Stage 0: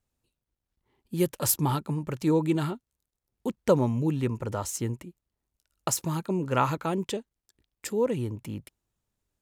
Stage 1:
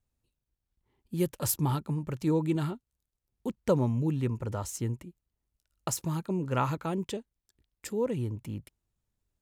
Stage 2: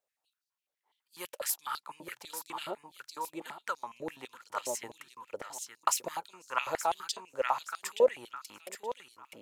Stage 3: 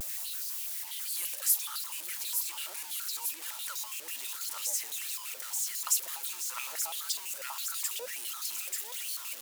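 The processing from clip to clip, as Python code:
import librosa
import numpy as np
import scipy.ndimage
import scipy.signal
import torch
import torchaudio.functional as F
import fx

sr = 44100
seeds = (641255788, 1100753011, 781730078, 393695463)

y1 = fx.low_shelf(x, sr, hz=150.0, db=8.0)
y1 = y1 * librosa.db_to_amplitude(-5.0)
y2 = fx.echo_feedback(y1, sr, ms=874, feedback_pct=21, wet_db=-8.5)
y2 = fx.rider(y2, sr, range_db=5, speed_s=0.5)
y2 = fx.filter_held_highpass(y2, sr, hz=12.0, low_hz=570.0, high_hz=4700.0)
y3 = y2 + 0.5 * 10.0 ** (-31.0 / 20.0) * np.sign(y2)
y3 = np.diff(y3, prepend=0.0)
y3 = fx.vibrato(y3, sr, rate_hz=0.57, depth_cents=41.0)
y3 = y3 * librosa.db_to_amplitude(1.5)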